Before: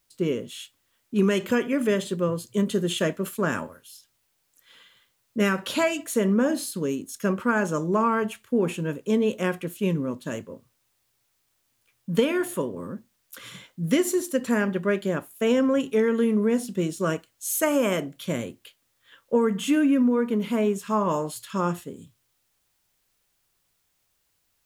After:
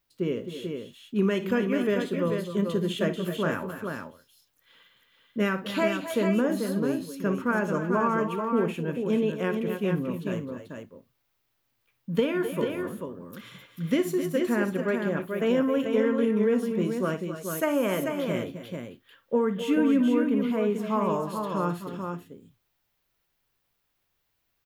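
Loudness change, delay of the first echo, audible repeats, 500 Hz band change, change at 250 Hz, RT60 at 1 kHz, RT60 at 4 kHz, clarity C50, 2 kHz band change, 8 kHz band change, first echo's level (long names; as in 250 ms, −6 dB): −2.0 dB, 58 ms, 3, −1.5 dB, −1.5 dB, no reverb audible, no reverb audible, no reverb audible, −2.5 dB, −10.5 dB, −14.5 dB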